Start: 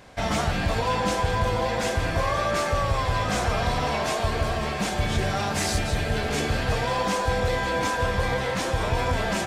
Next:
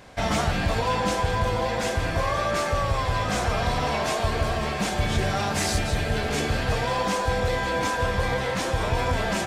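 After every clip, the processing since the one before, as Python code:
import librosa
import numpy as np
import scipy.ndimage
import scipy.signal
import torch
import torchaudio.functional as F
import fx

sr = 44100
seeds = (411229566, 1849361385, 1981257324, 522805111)

y = fx.rider(x, sr, range_db=10, speed_s=2.0)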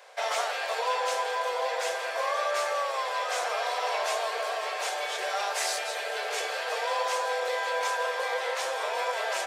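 y = scipy.signal.sosfilt(scipy.signal.butter(8, 460.0, 'highpass', fs=sr, output='sos'), x)
y = y * 10.0 ** (-2.5 / 20.0)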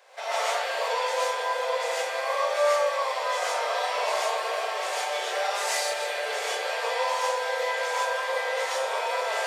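y = fx.rev_gated(x, sr, seeds[0], gate_ms=170, shape='rising', drr_db=-7.0)
y = y * 10.0 ** (-5.5 / 20.0)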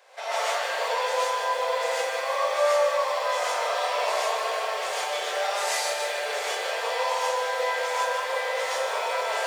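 y = fx.echo_crushed(x, sr, ms=152, feedback_pct=55, bits=8, wet_db=-8)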